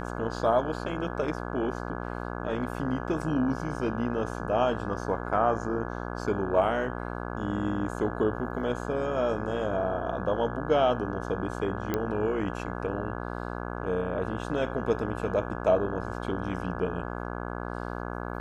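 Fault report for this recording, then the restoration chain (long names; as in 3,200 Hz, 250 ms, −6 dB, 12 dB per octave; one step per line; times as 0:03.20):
mains buzz 60 Hz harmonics 28 −35 dBFS
0:11.94: click −14 dBFS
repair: click removal
hum removal 60 Hz, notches 28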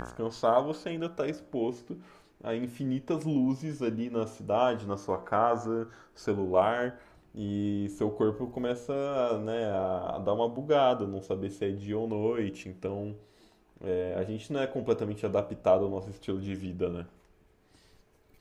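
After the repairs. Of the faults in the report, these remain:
none of them is left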